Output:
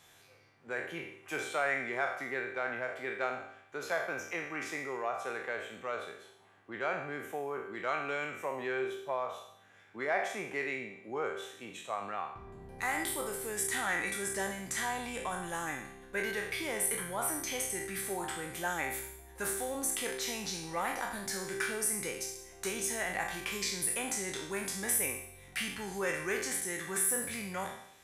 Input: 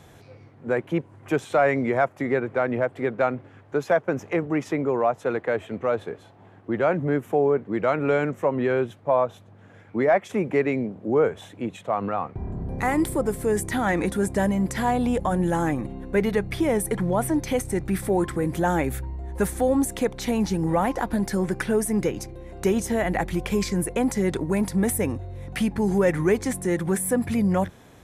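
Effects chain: spectral trails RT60 0.67 s; tilt shelf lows -9.5 dB, about 830 Hz; resonator 390 Hz, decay 0.81 s, mix 80%

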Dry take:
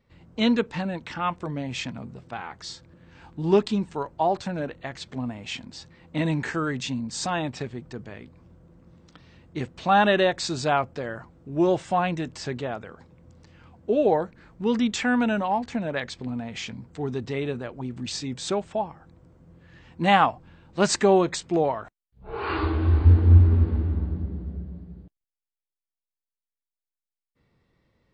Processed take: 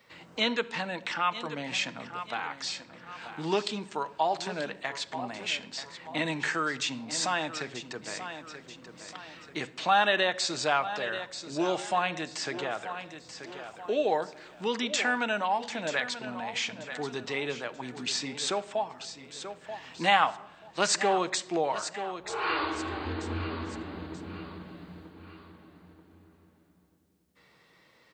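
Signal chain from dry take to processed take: HPF 1200 Hz 6 dB/oct; on a send: feedback echo 0.934 s, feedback 30%, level -14.5 dB; on the sum: shoebox room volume 2600 m³, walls furnished, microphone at 0.55 m; three-band squash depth 40%; gain +3 dB

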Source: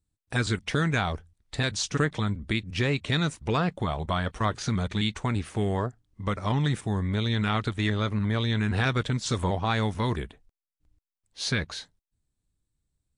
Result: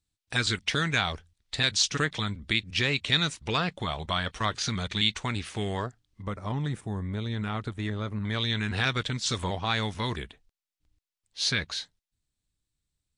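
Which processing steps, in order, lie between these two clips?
bell 3900 Hz +12 dB 2.6 oct, from 6.22 s -4 dB, from 8.25 s +9.5 dB; gain -5 dB

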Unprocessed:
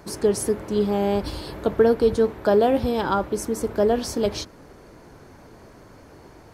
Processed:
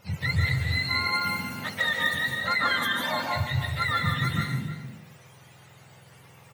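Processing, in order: spectrum mirrored in octaves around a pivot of 920 Hz; overloaded stage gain 13.5 dB; outdoor echo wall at 53 m, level -11 dB; reverb RT60 0.70 s, pre-delay 0.135 s, DRR 0.5 dB; gain -5 dB

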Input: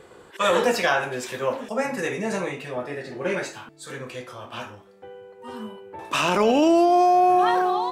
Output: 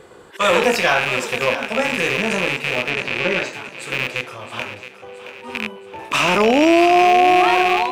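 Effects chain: rattling part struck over -40 dBFS, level -13 dBFS; 2.9–3.53 LPF 5800 Hz; thinning echo 0.671 s, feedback 49%, high-pass 220 Hz, level -12 dB; gain +4 dB

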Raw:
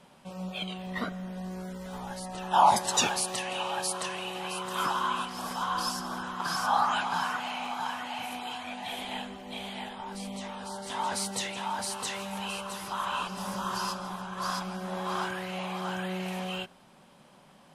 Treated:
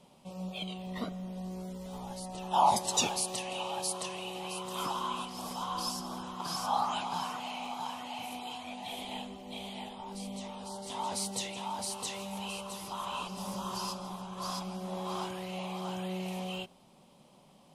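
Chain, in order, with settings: bell 1600 Hz -15 dB 0.64 oct; gain -2 dB

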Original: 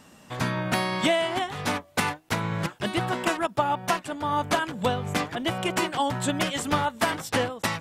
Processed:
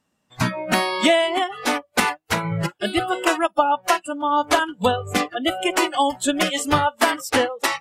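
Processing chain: spectral noise reduction 26 dB; gain +6.5 dB

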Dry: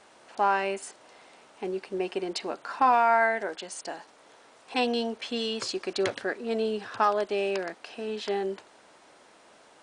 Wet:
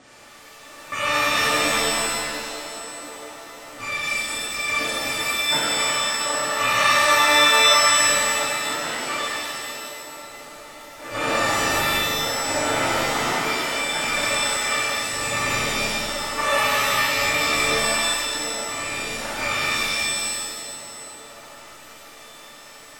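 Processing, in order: FFT order left unsorted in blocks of 256 samples; three-band isolator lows -15 dB, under 190 Hz, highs -24 dB, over 5000 Hz; in parallel at -1 dB: negative-ratio compressor -38 dBFS; on the sum: bit-crush 9-bit; band-limited delay 0.295 s, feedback 60%, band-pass 820 Hz, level -10 dB; speed mistake 78 rpm record played at 33 rpm; shimmer reverb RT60 1.6 s, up +7 st, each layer -2 dB, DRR -7.5 dB

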